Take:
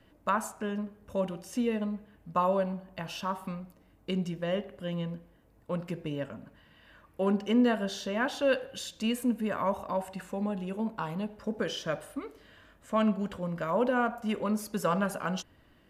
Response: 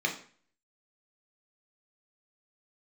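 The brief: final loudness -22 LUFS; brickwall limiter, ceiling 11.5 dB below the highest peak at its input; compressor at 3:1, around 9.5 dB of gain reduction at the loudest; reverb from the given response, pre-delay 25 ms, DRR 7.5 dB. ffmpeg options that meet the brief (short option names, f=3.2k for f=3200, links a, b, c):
-filter_complex "[0:a]acompressor=threshold=-33dB:ratio=3,alimiter=level_in=8.5dB:limit=-24dB:level=0:latency=1,volume=-8.5dB,asplit=2[a][b];[1:a]atrim=start_sample=2205,adelay=25[c];[b][c]afir=irnorm=-1:irlink=0,volume=-16dB[d];[a][d]amix=inputs=2:normalize=0,volume=19.5dB"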